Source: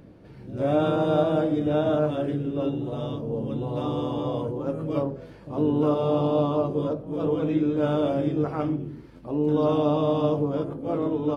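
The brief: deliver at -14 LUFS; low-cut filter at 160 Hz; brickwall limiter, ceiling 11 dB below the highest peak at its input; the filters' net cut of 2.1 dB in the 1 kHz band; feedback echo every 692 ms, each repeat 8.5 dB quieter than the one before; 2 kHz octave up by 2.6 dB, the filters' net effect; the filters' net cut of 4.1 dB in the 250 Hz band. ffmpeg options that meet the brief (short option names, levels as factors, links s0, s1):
-af "highpass=160,equalizer=f=250:t=o:g=-4.5,equalizer=f=1000:t=o:g=-4,equalizer=f=2000:t=o:g=6,alimiter=limit=0.075:level=0:latency=1,aecho=1:1:692|1384|2076|2768:0.376|0.143|0.0543|0.0206,volume=7.5"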